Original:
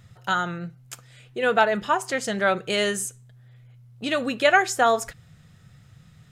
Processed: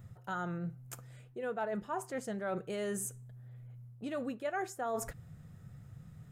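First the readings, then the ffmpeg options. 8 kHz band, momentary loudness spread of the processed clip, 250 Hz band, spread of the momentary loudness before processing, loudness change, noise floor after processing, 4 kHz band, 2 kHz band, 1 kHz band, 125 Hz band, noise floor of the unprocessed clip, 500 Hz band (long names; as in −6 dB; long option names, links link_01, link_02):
−12.0 dB, 15 LU, −9.5 dB, 19 LU, −15.5 dB, −56 dBFS, −24.5 dB, −20.5 dB, −16.5 dB, −5.5 dB, −53 dBFS, −13.5 dB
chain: -af "equalizer=frequency=3700:width=0.48:gain=-14.5,areverse,acompressor=threshold=-36dB:ratio=4,areverse"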